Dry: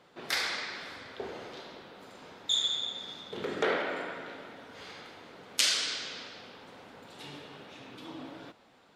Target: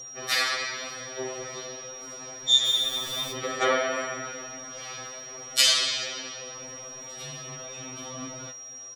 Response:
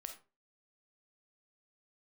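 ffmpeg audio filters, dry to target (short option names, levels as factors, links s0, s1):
-filter_complex "[0:a]asettb=1/sr,asplit=3[s0][s1][s2];[s0]atrim=end=2.654[s3];[s1]atrim=start=2.65:end=3.32,asetpts=PTS-STARTPTS,afade=t=in:d=0.004:c=qsin,afade=t=out:st=0.666:d=0.004:c=qsin,aeval=exprs='val(0)+0.5*0.0133*sgn(val(0))':c=same[s4];[s2]atrim=start=3.316[s5];[s3][s4]acrossfade=d=0.004:c1=hsin:c2=qsin[s6];[s6][s5]acrossfade=d=0.004:c1=qsin:c2=hsin,aecho=1:1:6.1:0.49,aeval=exprs='val(0)+0.00631*sin(2*PI*5700*n/s)':c=same,aphaser=in_gain=1:out_gain=1:delay=3.7:decay=0.25:speed=1.2:type=triangular,asplit=2[s7][s8];[1:a]atrim=start_sample=2205,asetrate=42777,aresample=44100[s9];[s8][s9]afir=irnorm=-1:irlink=0,volume=0.708[s10];[s7][s10]amix=inputs=2:normalize=0,afftfilt=real='re*2.45*eq(mod(b,6),0)':imag='im*2.45*eq(mod(b,6),0)':win_size=2048:overlap=0.75,volume=1.68"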